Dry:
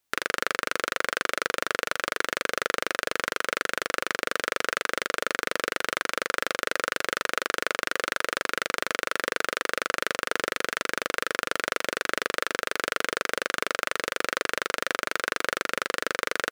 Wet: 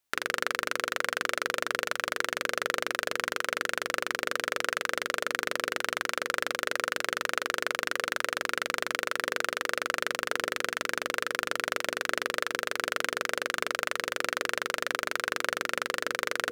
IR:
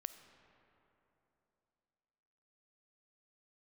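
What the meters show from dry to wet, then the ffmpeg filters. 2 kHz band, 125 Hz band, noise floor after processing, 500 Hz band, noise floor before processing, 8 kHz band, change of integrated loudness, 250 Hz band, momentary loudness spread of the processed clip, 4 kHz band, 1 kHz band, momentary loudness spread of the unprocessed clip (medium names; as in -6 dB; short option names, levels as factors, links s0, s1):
-2.5 dB, -3.5 dB, -52 dBFS, -3.0 dB, -73 dBFS, -2.5 dB, -2.5 dB, -3.5 dB, 1 LU, -2.5 dB, -2.5 dB, 1 LU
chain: -af "bandreject=f=60:t=h:w=6,bandreject=f=120:t=h:w=6,bandreject=f=180:t=h:w=6,bandreject=f=240:t=h:w=6,bandreject=f=300:t=h:w=6,bandreject=f=360:t=h:w=6,bandreject=f=420:t=h:w=6,bandreject=f=480:t=h:w=6,areverse,acompressor=mode=upward:threshold=0.0355:ratio=2.5,areverse,volume=0.75"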